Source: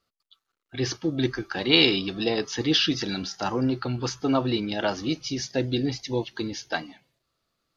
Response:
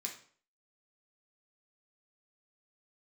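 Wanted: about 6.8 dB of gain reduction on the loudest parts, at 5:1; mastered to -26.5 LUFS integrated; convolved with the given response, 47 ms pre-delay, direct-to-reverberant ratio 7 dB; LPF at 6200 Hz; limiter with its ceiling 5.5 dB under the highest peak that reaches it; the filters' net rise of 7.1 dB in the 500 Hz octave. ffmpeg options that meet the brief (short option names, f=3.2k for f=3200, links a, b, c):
-filter_complex "[0:a]lowpass=6.2k,equalizer=f=500:t=o:g=9,acompressor=threshold=-20dB:ratio=5,alimiter=limit=-16dB:level=0:latency=1,asplit=2[a][b];[1:a]atrim=start_sample=2205,adelay=47[c];[b][c]afir=irnorm=-1:irlink=0,volume=-6dB[d];[a][d]amix=inputs=2:normalize=0,volume=1dB"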